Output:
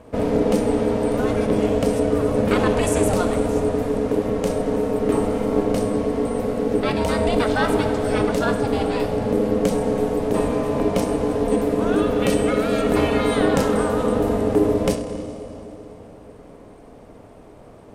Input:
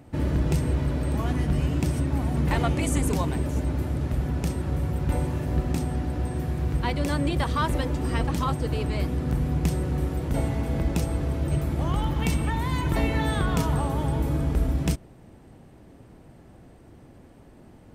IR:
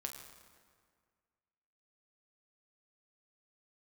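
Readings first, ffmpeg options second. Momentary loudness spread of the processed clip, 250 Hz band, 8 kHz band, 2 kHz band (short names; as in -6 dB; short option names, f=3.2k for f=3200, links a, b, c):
4 LU, +7.5 dB, +5.0 dB, +6.0 dB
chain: -filter_complex "[0:a]aeval=exprs='val(0)*sin(2*PI*360*n/s)':c=same,asplit=2[a][b];[1:a]atrim=start_sample=2205,asetrate=22491,aresample=44100[c];[b][c]afir=irnorm=-1:irlink=0,volume=2dB[d];[a][d]amix=inputs=2:normalize=0"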